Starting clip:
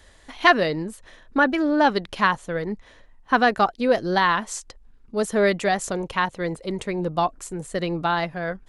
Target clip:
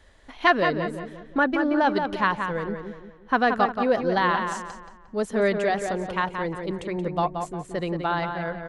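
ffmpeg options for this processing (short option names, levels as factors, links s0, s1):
-filter_complex "[0:a]highshelf=f=4600:g=-9.5,asplit=2[s0][s1];[s1]adelay=177,lowpass=f=3300:p=1,volume=0.501,asplit=2[s2][s3];[s3]adelay=177,lowpass=f=3300:p=1,volume=0.41,asplit=2[s4][s5];[s5]adelay=177,lowpass=f=3300:p=1,volume=0.41,asplit=2[s6][s7];[s7]adelay=177,lowpass=f=3300:p=1,volume=0.41,asplit=2[s8][s9];[s9]adelay=177,lowpass=f=3300:p=1,volume=0.41[s10];[s2][s4][s6][s8][s10]amix=inputs=5:normalize=0[s11];[s0][s11]amix=inputs=2:normalize=0,volume=0.75"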